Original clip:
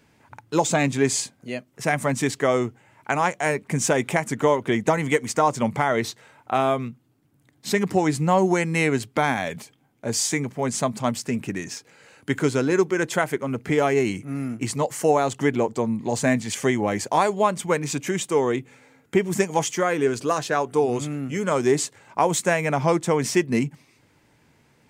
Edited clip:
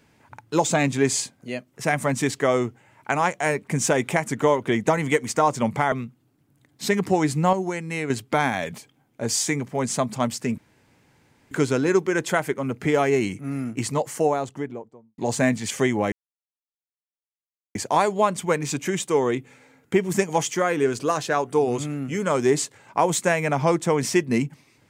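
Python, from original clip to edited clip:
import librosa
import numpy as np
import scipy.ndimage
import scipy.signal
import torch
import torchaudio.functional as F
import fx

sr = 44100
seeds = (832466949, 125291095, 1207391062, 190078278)

y = fx.studio_fade_out(x, sr, start_s=14.71, length_s=1.31)
y = fx.edit(y, sr, fx.cut(start_s=5.92, length_s=0.84),
    fx.clip_gain(start_s=8.37, length_s=0.57, db=-7.0),
    fx.room_tone_fill(start_s=11.42, length_s=0.93),
    fx.insert_silence(at_s=16.96, length_s=1.63), tone=tone)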